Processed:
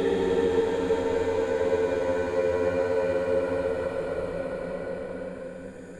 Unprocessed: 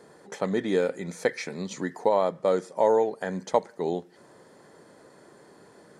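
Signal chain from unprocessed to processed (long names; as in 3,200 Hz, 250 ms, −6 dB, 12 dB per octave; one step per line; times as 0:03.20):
one-sided soft clipper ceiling −23 dBFS
mains-hum notches 60/120/180/240/300/360/420/480 Hz
in parallel at −5.5 dB: wave folding −17 dBFS
on the sum: tuned comb filter 88 Hz, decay 1.6 s, mix 40%
extreme stretch with random phases 31×, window 0.10 s, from 0:00.75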